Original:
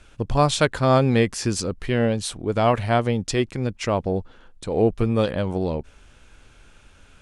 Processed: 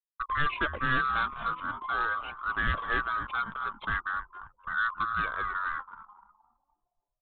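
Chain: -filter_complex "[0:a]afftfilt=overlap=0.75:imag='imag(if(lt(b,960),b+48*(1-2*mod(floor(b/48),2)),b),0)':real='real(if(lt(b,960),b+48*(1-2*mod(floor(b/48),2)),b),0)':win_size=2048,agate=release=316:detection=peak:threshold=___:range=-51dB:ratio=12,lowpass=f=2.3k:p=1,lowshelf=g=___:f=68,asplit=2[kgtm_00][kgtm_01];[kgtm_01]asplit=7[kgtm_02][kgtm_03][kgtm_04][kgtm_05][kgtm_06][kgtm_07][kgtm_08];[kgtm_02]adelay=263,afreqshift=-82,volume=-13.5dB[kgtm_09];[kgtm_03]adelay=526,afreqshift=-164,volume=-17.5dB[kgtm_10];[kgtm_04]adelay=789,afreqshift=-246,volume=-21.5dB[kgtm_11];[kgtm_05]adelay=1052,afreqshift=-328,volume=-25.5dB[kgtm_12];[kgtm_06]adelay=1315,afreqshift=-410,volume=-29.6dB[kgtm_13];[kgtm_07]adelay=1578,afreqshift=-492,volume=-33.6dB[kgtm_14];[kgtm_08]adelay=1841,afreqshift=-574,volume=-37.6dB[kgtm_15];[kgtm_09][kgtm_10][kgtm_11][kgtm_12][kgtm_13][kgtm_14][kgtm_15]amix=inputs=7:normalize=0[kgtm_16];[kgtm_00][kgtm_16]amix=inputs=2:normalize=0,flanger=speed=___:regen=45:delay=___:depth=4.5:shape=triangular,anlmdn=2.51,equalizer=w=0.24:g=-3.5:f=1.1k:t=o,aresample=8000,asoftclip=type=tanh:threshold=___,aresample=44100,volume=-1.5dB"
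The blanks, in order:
-39dB, 10, 0.4, 0.7, -19.5dB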